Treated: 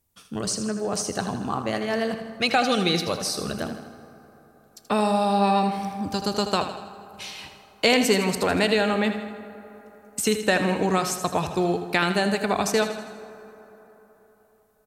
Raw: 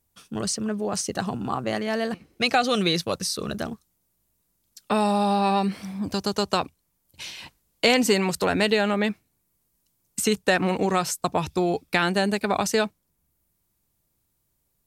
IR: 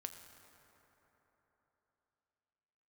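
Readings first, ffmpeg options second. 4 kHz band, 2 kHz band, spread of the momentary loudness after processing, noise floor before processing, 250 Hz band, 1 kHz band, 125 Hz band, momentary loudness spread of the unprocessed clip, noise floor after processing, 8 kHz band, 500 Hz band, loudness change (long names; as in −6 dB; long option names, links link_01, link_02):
+0.5 dB, +0.5 dB, 16 LU, −73 dBFS, 0.0 dB, +1.0 dB, 0.0 dB, 12 LU, −59 dBFS, +0.5 dB, +0.5 dB, +0.5 dB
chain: -filter_complex "[0:a]aecho=1:1:80|160|240|320|400|480:0.316|0.171|0.0922|0.0498|0.0269|0.0145,asplit=2[link_01][link_02];[1:a]atrim=start_sample=2205[link_03];[link_02][link_03]afir=irnorm=-1:irlink=0,volume=1.5dB[link_04];[link_01][link_04]amix=inputs=2:normalize=0,volume=-5dB"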